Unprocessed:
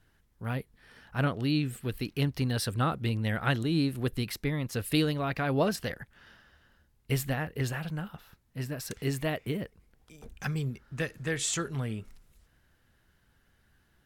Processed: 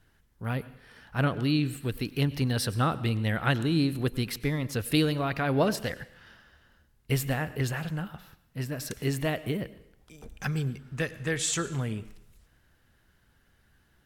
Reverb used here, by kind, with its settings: plate-style reverb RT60 0.68 s, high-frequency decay 1×, pre-delay 85 ms, DRR 16.5 dB; trim +2 dB

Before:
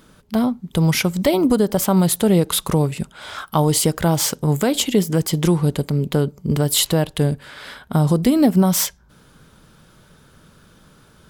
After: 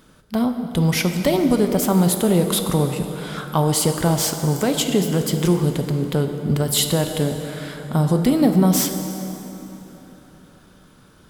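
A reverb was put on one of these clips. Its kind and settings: plate-style reverb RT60 3.8 s, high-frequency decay 0.65×, DRR 5.5 dB; trim -2 dB

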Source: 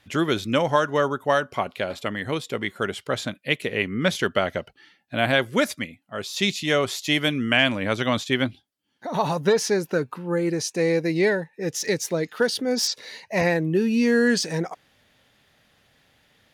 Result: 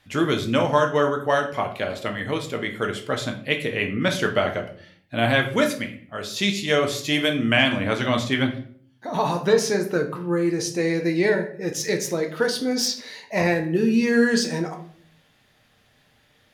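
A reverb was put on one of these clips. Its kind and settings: simulated room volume 60 m³, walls mixed, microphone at 0.48 m; trim -1 dB

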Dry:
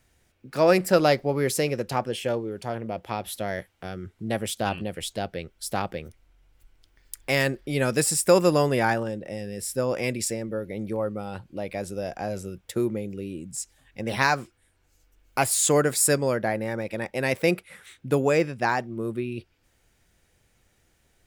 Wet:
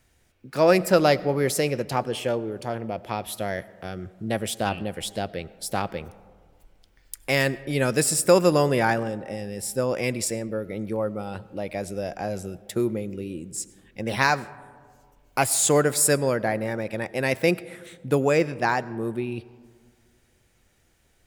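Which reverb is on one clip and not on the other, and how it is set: algorithmic reverb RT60 1.9 s, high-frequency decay 0.3×, pre-delay 55 ms, DRR 19 dB; trim +1 dB

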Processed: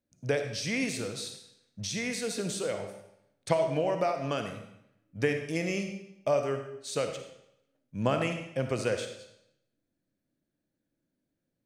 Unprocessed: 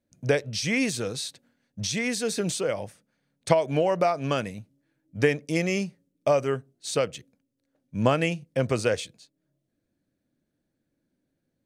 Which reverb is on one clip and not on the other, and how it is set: algorithmic reverb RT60 0.79 s, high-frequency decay 0.95×, pre-delay 15 ms, DRR 5.5 dB; trim -6 dB

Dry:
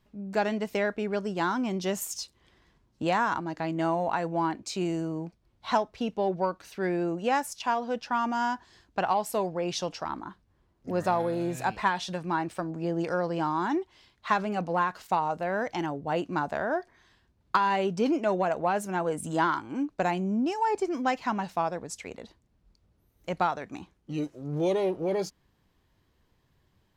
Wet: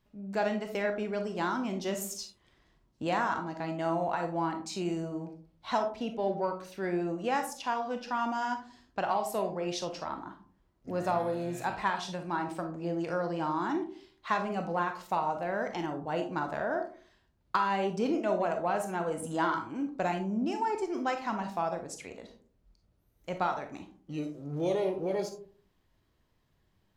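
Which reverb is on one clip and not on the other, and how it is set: algorithmic reverb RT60 0.47 s, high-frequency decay 0.35×, pre-delay 0 ms, DRR 5 dB; trim -4.5 dB

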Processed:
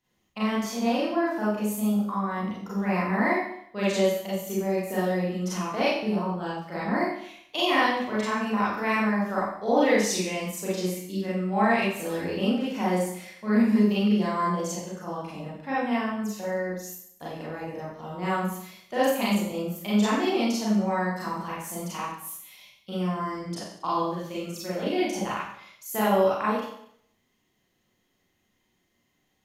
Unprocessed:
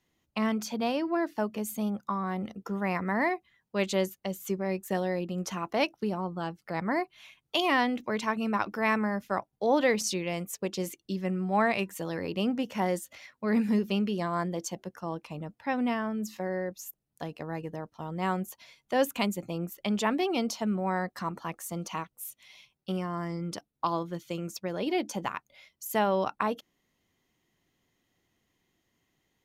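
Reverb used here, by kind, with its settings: Schroeder reverb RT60 0.67 s, combs from 30 ms, DRR -8.5 dB; trim -5.5 dB

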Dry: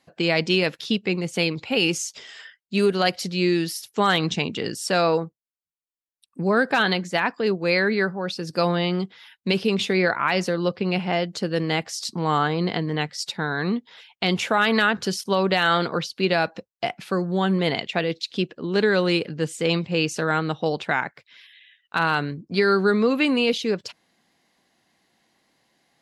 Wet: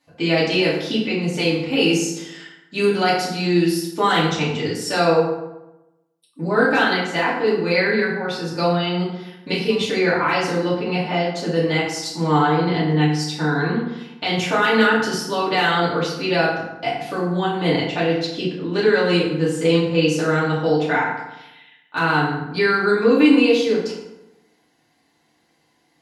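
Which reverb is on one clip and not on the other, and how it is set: FDN reverb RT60 0.96 s, low-frequency decay 1.1×, high-frequency decay 0.6×, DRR -8 dB; trim -5.5 dB

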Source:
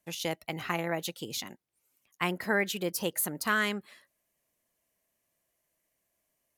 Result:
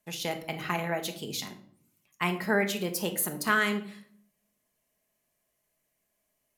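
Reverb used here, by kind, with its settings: simulated room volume 880 m³, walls furnished, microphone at 1.4 m

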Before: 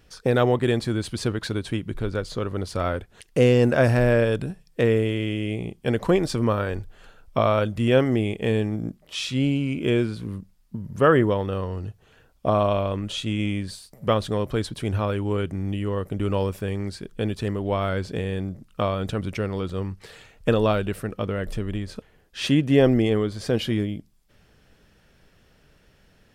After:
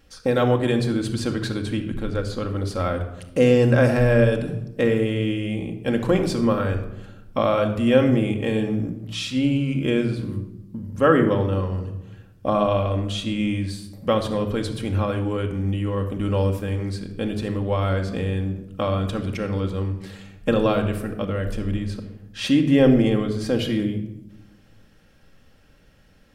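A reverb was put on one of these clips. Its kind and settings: simulated room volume 3300 m³, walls furnished, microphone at 2.2 m; trim -1 dB

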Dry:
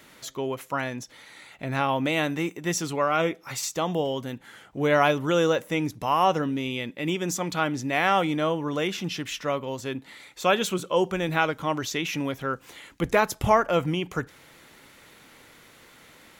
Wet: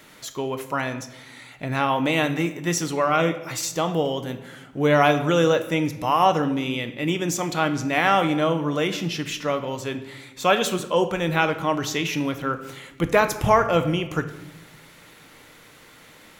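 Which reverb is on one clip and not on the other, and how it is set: simulated room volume 450 m³, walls mixed, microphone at 0.48 m; trim +2.5 dB

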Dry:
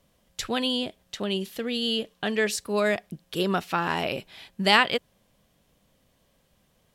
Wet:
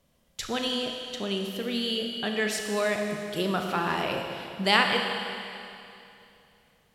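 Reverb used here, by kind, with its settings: Schroeder reverb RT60 2.7 s, combs from 26 ms, DRR 2.5 dB; trim -3 dB

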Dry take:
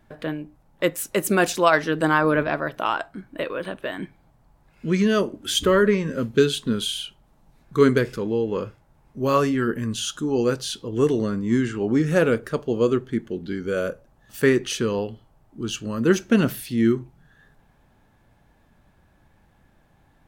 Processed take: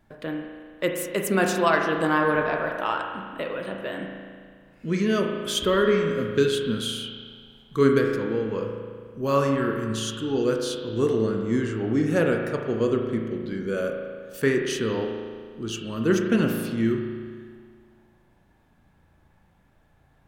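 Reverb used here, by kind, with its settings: spring tank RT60 1.9 s, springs 36 ms, chirp 80 ms, DRR 2.5 dB; trim -4 dB

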